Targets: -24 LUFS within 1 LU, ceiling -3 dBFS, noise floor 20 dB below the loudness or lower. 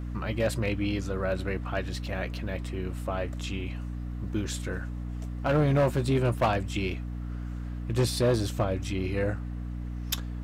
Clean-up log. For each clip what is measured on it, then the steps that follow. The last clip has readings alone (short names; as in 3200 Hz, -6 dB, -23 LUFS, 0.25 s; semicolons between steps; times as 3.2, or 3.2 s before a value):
clipped 0.8%; flat tops at -18.5 dBFS; hum 60 Hz; harmonics up to 300 Hz; hum level -32 dBFS; loudness -30.0 LUFS; peak -18.5 dBFS; loudness target -24.0 LUFS
-> clip repair -18.5 dBFS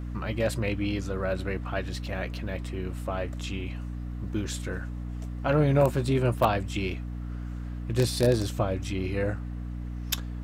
clipped 0.0%; hum 60 Hz; harmonics up to 300 Hz; hum level -32 dBFS
-> de-hum 60 Hz, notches 5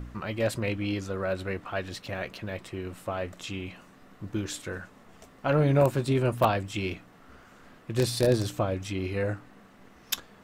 hum none; loudness -29.5 LUFS; peak -9.5 dBFS; loudness target -24.0 LUFS
-> gain +5.5 dB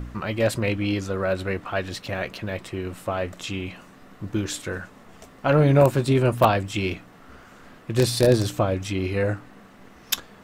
loudness -24.0 LUFS; peak -4.0 dBFS; noise floor -49 dBFS